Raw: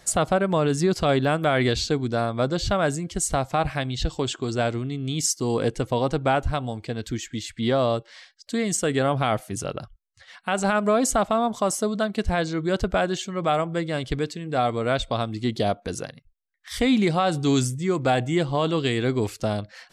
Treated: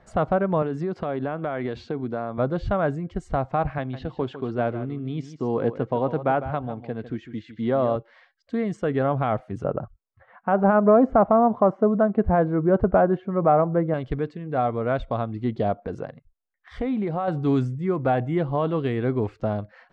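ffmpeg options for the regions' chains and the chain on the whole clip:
-filter_complex "[0:a]asettb=1/sr,asplit=3[a][b][c];[a]atrim=end=0.624[d];[b]atrim=start=0.62:end=2.38,asetpts=PTS-STARTPTS,afade=t=in:d=0.004:c=qsin,afade=t=out:st=1.756:d=0.004:c=qsin,highpass=160,acompressor=threshold=-22dB:ratio=5:attack=3.2:release=140:knee=1:detection=peak[e];[c]atrim=start=2.376[f];[d][e]acrossfade=d=0.004:c1=hsin:c2=qsin[g];[g][f]acrossfade=d=0.004:c1=qsin:c2=hsin,asettb=1/sr,asplit=3[h][i][j];[h]atrim=end=3.784[k];[i]atrim=start=3.78:end=7.96,asetpts=PTS-STARTPTS,afade=t=in:d=0.004:c=qsin,afade=t=out:st=4.176:d=0.004:c=qsin,highpass=130,lowpass=5.6k,aecho=1:1:153:0.237,atrim=end_sample=184338[l];[j]atrim=start=7.956[m];[k][l]acrossfade=d=0.004:c1=hsin:c2=qsin[n];[n][m]acrossfade=d=0.004:c1=qsin:c2=hsin,asettb=1/sr,asplit=3[o][p][q];[o]atrim=end=9.644[r];[p]atrim=start=9.64:end=13.94,asetpts=PTS-STARTPTS,afade=t=in:d=0.004:c=qsin,afade=t=out:st=4.296:d=0.004:c=qsin,lowpass=1.2k,acontrast=57,lowshelf=f=62:g=-11.5[s];[q]atrim=start=13.936[t];[r][s]acrossfade=d=0.004:c1=hsin:c2=qsin[u];[u][t]acrossfade=d=0.004:c1=qsin:c2=hsin,asettb=1/sr,asplit=3[v][w][x];[v]atrim=end=15.784[y];[w]atrim=start=15.78:end=17.28,asetpts=PTS-STARTPTS,afade=t=in:d=0.004:c=qsin,afade=t=out:st=1.496:d=0.004:c=qsin,equalizer=f=630:t=o:w=2:g=4.5,acompressor=threshold=-25dB:ratio=2.5:attack=3.2:release=140:knee=1:detection=peak[z];[x]atrim=start=17.276[aa];[y][z]acrossfade=d=0.004:c1=hsin:c2=qsin[ab];[ab][aa]acrossfade=d=0.004:c1=qsin:c2=hsin,lowpass=1.4k,equalizer=f=330:w=6.3:g=-2.5"

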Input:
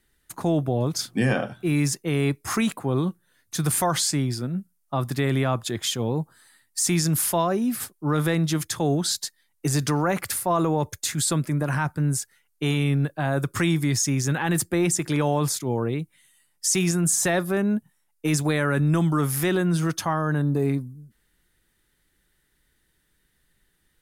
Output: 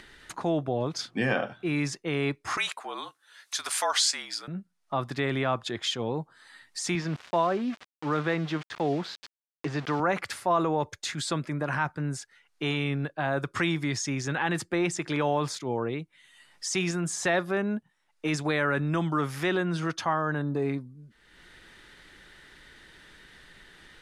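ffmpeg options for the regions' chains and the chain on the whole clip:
-filter_complex "[0:a]asettb=1/sr,asplit=3[a][b][c];[a]atrim=end=2.574[d];[b]atrim=start=2.57:end=4.48,asetpts=PTS-STARTPTS,afade=t=in:d=0.004:c=qsin,afade=t=out:st=1.906:d=0.004:c=qsin,afreqshift=-47,highpass=720,highshelf=f=3.8k:g=11[e];[c]atrim=start=4.476[f];[d][e]acrossfade=d=0.004:c1=hsin:c2=qsin[g];[g][f]acrossfade=d=0.004:c1=qsin:c2=hsin,asettb=1/sr,asplit=3[h][i][j];[h]atrim=end=6.954[k];[i]atrim=start=6.95:end=10,asetpts=PTS-STARTPTS,afade=t=in:d=0.004:c=qsin,afade=t=out:st=3.046:d=0.004:c=qsin,highpass=110,lowpass=2.9k,aeval=exprs='val(0)*gte(abs(val(0)),0.0178)':c=same[l];[j]atrim=start=9.996[m];[k][l]acrossfade=d=0.004:c1=hsin:c2=qsin[n];[n][m]acrossfade=d=0.004:c1=qsin:c2=hsin,lowpass=4.2k,lowshelf=f=260:g=-11.5,acompressor=mode=upward:threshold=-34dB:ratio=2.5"

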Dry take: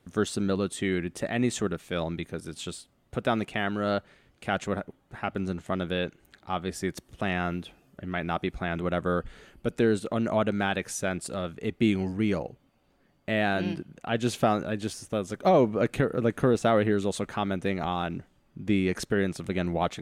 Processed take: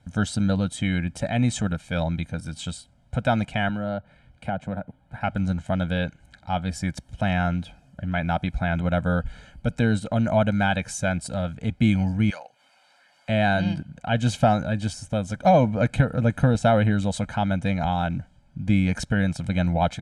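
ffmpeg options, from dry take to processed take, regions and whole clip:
-filter_complex "[0:a]asettb=1/sr,asplit=3[a][b][c];[a]atrim=end=3.694[d];[b]atrim=start=3.69:end=5.21,asetpts=PTS-STARTPTS,afade=t=in:d=0.004:c=qsin,afade=t=out:st=1.516:d=0.004:c=qsin,equalizer=f=6.3k:t=o:w=1.1:g=-9,acrossover=split=110|1000[e][f][g];[e]acompressor=threshold=-56dB:ratio=4[h];[f]acompressor=threshold=-29dB:ratio=4[i];[g]acompressor=threshold=-46dB:ratio=4[j];[h][i][j]amix=inputs=3:normalize=0[k];[c]atrim=start=5.206[l];[d][k]acrossfade=d=0.004:c1=hsin:c2=qsin[m];[m][l]acrossfade=d=0.004:c1=qsin:c2=hsin,asettb=1/sr,asplit=3[n][o][p];[n]atrim=end=12.304[q];[o]atrim=start=12.3:end=13.29,asetpts=PTS-STARTPTS,afade=t=in:d=0.004:c=qsin,afade=t=out:st=0.986:d=0.004:c=qsin,highpass=1.1k,acompressor=mode=upward:threshold=-49dB:ratio=2.5:attack=3.2:release=140:knee=2.83:detection=peak[r];[p]atrim=start=13.286[s];[q][r]acrossfade=d=0.004:c1=hsin:c2=qsin[t];[t][s]acrossfade=d=0.004:c1=qsin:c2=hsin,lowpass=f=9.8k:w=0.5412,lowpass=f=9.8k:w=1.3066,equalizer=f=70:w=0.38:g=7,aecho=1:1:1.3:0.93"

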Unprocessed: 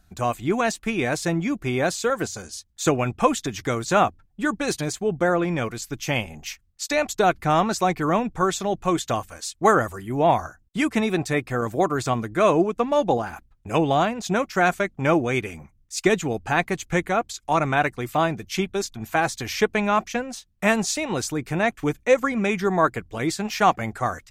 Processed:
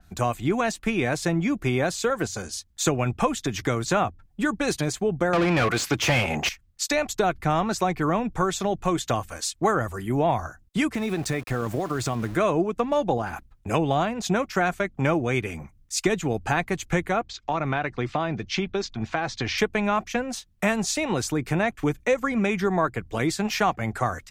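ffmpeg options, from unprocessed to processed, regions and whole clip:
-filter_complex "[0:a]asettb=1/sr,asplit=3[a][b][c];[a]atrim=end=5.334[d];[b]atrim=start=5.33:end=6.49,asetpts=PTS-STARTPTS,afade=t=in:d=0.004:c=qsin,afade=t=out:st=1.156:d=0.004:c=qsin,asplit=2[e][f];[f]highpass=f=720:p=1,volume=28dB,asoftclip=type=tanh:threshold=-10dB[g];[e][g]amix=inputs=2:normalize=0,lowpass=f=3.2k:p=1,volume=-6dB,highpass=43[h];[c]atrim=start=6.486[i];[d][h]acrossfade=d=0.004:c1=hsin:c2=qsin[j];[j][i]acrossfade=d=0.004:c1=qsin:c2=hsin,asettb=1/sr,asplit=3[k][l][m];[k]atrim=end=10.944[n];[l]atrim=start=10.94:end=12.36,asetpts=PTS-STARTPTS,afade=t=in:d=0.004:c=qsin,afade=t=out:st=1.416:d=0.004:c=qsin,lowshelf=f=160:g=3.5,acompressor=threshold=-25dB:ratio=6:attack=3.2:release=140:knee=1:detection=peak,aeval=exprs='val(0)*gte(abs(val(0)),0.00891)':c=same[o];[m]atrim=start=12.356[p];[n][o]acrossfade=d=0.004:c1=hsin:c2=qsin[q];[q][p]acrossfade=d=0.004:c1=qsin:c2=hsin,asettb=1/sr,asplit=3[r][s][t];[r]atrim=end=17.224[u];[s]atrim=start=17.22:end=19.58,asetpts=PTS-STARTPTS,afade=t=in:d=0.004:c=qsin,afade=t=out:st=2.356:d=0.004:c=qsin,lowpass=f=5.3k:w=0.5412,lowpass=f=5.3k:w=1.3066,acompressor=threshold=-24dB:ratio=3:attack=3.2:release=140:knee=1:detection=peak[v];[t]atrim=start=19.576[w];[u][v]acrossfade=d=0.004:c1=hsin:c2=qsin[x];[x][w]acrossfade=d=0.004:c1=qsin:c2=hsin,acrossover=split=120[y][z];[z]acompressor=threshold=-27dB:ratio=2.5[aa];[y][aa]amix=inputs=2:normalize=0,adynamicequalizer=threshold=0.00631:dfrequency=4200:dqfactor=0.7:tfrequency=4200:tqfactor=0.7:attack=5:release=100:ratio=0.375:range=2:mode=cutabove:tftype=highshelf,volume=4dB"

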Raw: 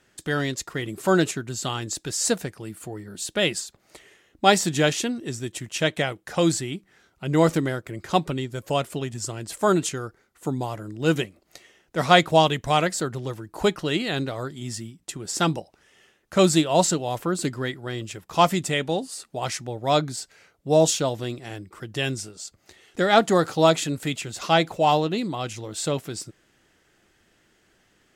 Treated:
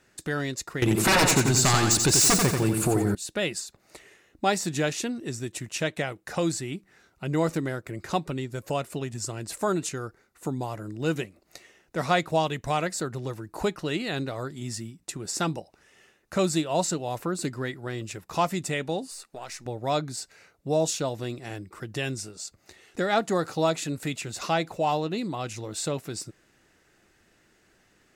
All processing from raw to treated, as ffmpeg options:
-filter_complex "[0:a]asettb=1/sr,asplit=3[a][b][c];[a]atrim=end=0.824[d];[b]atrim=start=0.82:end=3.15,asetpts=PTS-STARTPTS,afade=t=in:d=0.004:c=qsin,afade=t=out:st=2.326:d=0.004:c=qsin,bandreject=f=1.9k:w=10,aeval=exprs='0.376*sin(PI/2*5.62*val(0)/0.376)':c=same,aecho=1:1:88|176|264|352|440:0.531|0.228|0.0982|0.0422|0.0181,atrim=end_sample=102753[e];[c]atrim=start=3.146[f];[d][e]acrossfade=d=0.004:c1=hsin:c2=qsin[g];[g][f]acrossfade=d=0.004:c1=qsin:c2=hsin,asettb=1/sr,asplit=3[h][i][j];[h]atrim=end=19.114[k];[i]atrim=start=19.11:end=19.66,asetpts=PTS-STARTPTS,afade=t=in:d=0.004:c=qsin,afade=t=out:st=0.546:d=0.004:c=qsin,aeval=exprs='if(lt(val(0),0),0.708*val(0),val(0))':c=same,equalizer=f=110:w=0.42:g=-10,acompressor=threshold=-36dB:ratio=3:attack=3.2:release=140:knee=1:detection=peak[l];[j]atrim=start=19.656[m];[k][l]acrossfade=d=0.004:c1=hsin:c2=qsin[n];[n][m]acrossfade=d=0.004:c1=qsin:c2=hsin,bandreject=f=3.2k:w=9.4,acompressor=threshold=-32dB:ratio=1.5"

